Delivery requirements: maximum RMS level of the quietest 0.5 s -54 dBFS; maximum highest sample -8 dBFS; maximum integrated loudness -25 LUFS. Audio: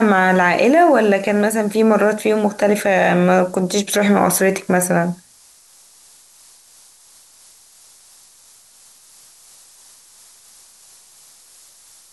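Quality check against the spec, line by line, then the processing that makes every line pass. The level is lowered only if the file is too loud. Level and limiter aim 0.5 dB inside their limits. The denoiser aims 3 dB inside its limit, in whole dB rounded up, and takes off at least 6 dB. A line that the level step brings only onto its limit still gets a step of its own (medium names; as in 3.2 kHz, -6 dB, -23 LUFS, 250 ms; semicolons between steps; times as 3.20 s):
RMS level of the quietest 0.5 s -49 dBFS: fail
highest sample -4.5 dBFS: fail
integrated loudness -15.5 LUFS: fail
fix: trim -10 dB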